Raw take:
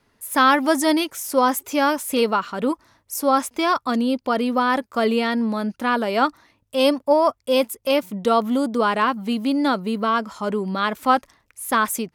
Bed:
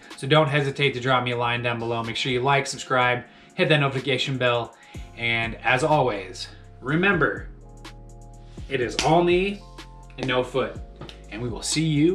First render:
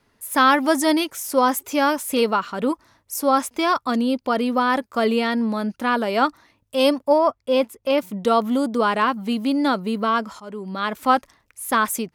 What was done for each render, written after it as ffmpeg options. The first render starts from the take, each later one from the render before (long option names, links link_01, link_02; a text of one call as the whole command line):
ffmpeg -i in.wav -filter_complex "[0:a]asettb=1/sr,asplit=3[link_01][link_02][link_03];[link_01]atrim=end=7.184[link_04];[link_02]atrim=start=7.18:end=7.98,asetpts=PTS-STARTPTS,afade=type=in:duration=0.004:curve=qsin,afade=type=out:start_time=0.796:duration=0.004:curve=qsin,lowpass=frequency=2800:poles=1[link_05];[link_03]atrim=start=7.976[link_06];[link_04][link_05]acrossfade=duration=0.004:curve1=hsin:curve2=qsin[link_07];[link_07][link_06]acrossfade=duration=0.004:curve1=qsin:curve2=hsin,asplit=2[link_08][link_09];[link_08]atrim=end=10.4,asetpts=PTS-STARTPTS,afade=type=out:start_time=10.396:duration=0.004:curve=hsin:silence=0.149624[link_10];[link_09]atrim=start=10.4,asetpts=PTS-STARTPTS,afade=type=in:duration=0.63:silence=0.149624[link_11];[link_10][link_11]concat=n=2:v=0:a=1" out.wav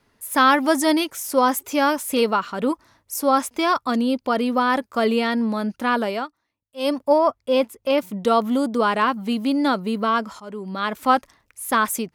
ffmpeg -i in.wav -filter_complex "[0:a]asplit=3[link_01][link_02][link_03];[link_01]atrim=end=6.28,asetpts=PTS-STARTPTS,afade=type=out:start_time=6.06:duration=0.22:silence=0.0891251[link_04];[link_02]atrim=start=6.28:end=6.75,asetpts=PTS-STARTPTS,volume=-21dB[link_05];[link_03]atrim=start=6.75,asetpts=PTS-STARTPTS,afade=type=in:duration=0.22:silence=0.0891251[link_06];[link_04][link_05][link_06]concat=n=3:v=0:a=1" out.wav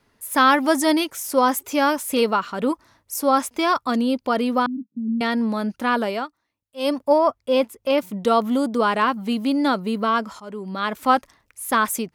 ffmpeg -i in.wav -filter_complex "[0:a]asettb=1/sr,asplit=3[link_01][link_02][link_03];[link_01]atrim=end=4.664[link_04];[link_02]atrim=start=4.66:end=5.21,asetpts=PTS-STARTPTS,afade=type=in:duration=0.004:curve=qsin,afade=type=out:start_time=0.546:duration=0.004:curve=qsin,asuperpass=centerf=200:order=8:qfactor=1.5[link_05];[link_03]atrim=start=5.206[link_06];[link_04][link_05]acrossfade=duration=0.004:curve1=hsin:curve2=qsin[link_07];[link_07][link_06]acrossfade=duration=0.004:curve1=qsin:curve2=hsin" out.wav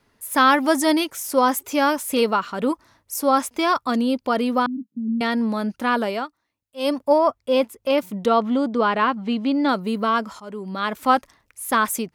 ffmpeg -i in.wav -filter_complex "[0:a]asettb=1/sr,asplit=3[link_01][link_02][link_03];[link_01]atrim=end=8.264[link_04];[link_02]atrim=start=8.26:end=9.69,asetpts=PTS-STARTPTS,afade=type=in:duration=0.004:curve=qsin,afade=type=out:start_time=1.426:duration=0.004:curve=qsin,lowpass=4100[link_05];[link_03]atrim=start=9.686[link_06];[link_04][link_05]acrossfade=duration=0.004:curve1=hsin:curve2=qsin[link_07];[link_07][link_06]acrossfade=duration=0.004:curve1=qsin:curve2=hsin" out.wav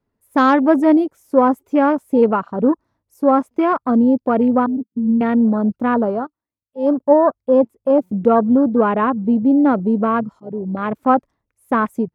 ffmpeg -i in.wav -af "afwtdn=0.0447,tiltshelf=frequency=1200:gain=8.5" out.wav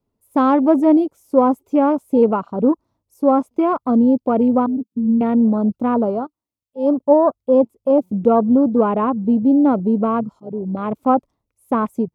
ffmpeg -i in.wav -filter_complex "[0:a]acrossover=split=2600[link_01][link_02];[link_02]acompressor=threshold=-47dB:ratio=4:attack=1:release=60[link_03];[link_01][link_03]amix=inputs=2:normalize=0,equalizer=frequency=1700:width_type=o:width=0.61:gain=-12.5" out.wav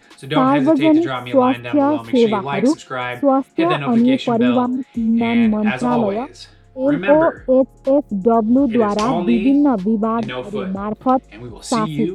ffmpeg -i in.wav -i bed.wav -filter_complex "[1:a]volume=-3.5dB[link_01];[0:a][link_01]amix=inputs=2:normalize=0" out.wav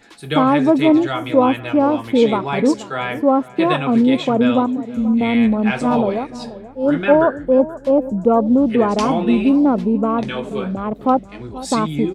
ffmpeg -i in.wav -filter_complex "[0:a]asplit=2[link_01][link_02];[link_02]adelay=481,lowpass=frequency=1000:poles=1,volume=-15dB,asplit=2[link_03][link_04];[link_04]adelay=481,lowpass=frequency=1000:poles=1,volume=0.33,asplit=2[link_05][link_06];[link_06]adelay=481,lowpass=frequency=1000:poles=1,volume=0.33[link_07];[link_01][link_03][link_05][link_07]amix=inputs=4:normalize=0" out.wav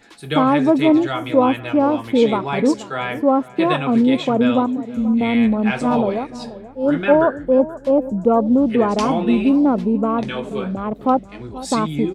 ffmpeg -i in.wav -af "volume=-1dB" out.wav